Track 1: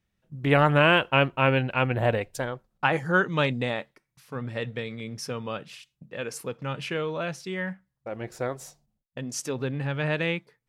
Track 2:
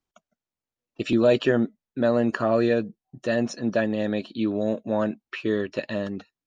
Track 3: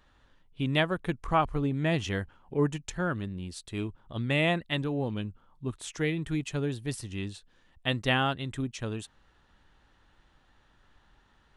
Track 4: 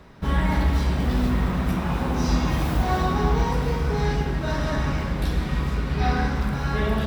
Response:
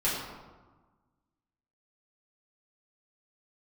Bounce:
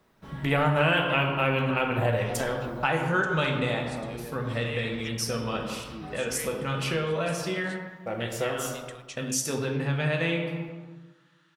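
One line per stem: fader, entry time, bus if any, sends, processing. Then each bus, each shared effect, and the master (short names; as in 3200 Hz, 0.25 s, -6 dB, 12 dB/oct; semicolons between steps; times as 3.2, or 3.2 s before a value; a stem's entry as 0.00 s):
-1.5 dB, 0.00 s, no bus, send -6.5 dB, high shelf 6600 Hz +11.5 dB
-10.0 dB, 1.55 s, bus A, no send, dry
+2.0 dB, 0.35 s, bus A, send -21.5 dB, steep high-pass 1100 Hz
-15.5 dB, 0.00 s, bus A, send -19.5 dB, dry
bus A: 0.0 dB, HPF 150 Hz; compressor 2.5:1, threshold -42 dBFS, peak gain reduction 14 dB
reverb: on, RT60 1.3 s, pre-delay 4 ms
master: compressor 2:1, threshold -27 dBFS, peak gain reduction 9.5 dB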